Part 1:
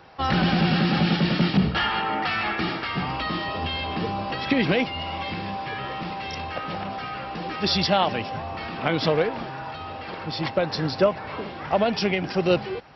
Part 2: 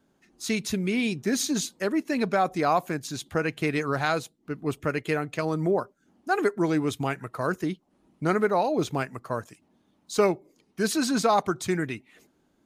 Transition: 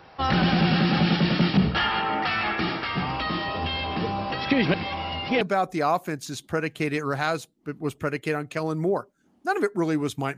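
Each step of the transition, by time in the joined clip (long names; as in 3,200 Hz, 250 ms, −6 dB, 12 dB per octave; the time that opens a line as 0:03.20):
part 1
0:04.74–0:05.41: reverse
0:05.41: continue with part 2 from 0:02.23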